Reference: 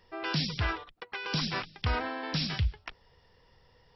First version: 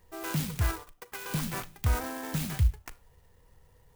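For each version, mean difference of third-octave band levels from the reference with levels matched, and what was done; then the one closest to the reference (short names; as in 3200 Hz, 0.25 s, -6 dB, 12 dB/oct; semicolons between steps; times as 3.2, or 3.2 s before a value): 8.5 dB: median filter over 5 samples; low shelf 130 Hz +9.5 dB; Schroeder reverb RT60 0.31 s, combs from 27 ms, DRR 16 dB; clock jitter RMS 0.068 ms; gain -2.5 dB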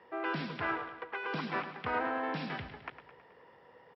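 6.0 dB: G.711 law mismatch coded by mu; BPF 130–3500 Hz; three-band isolator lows -14 dB, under 220 Hz, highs -16 dB, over 2300 Hz; on a send: feedback echo 0.107 s, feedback 56%, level -11 dB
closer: second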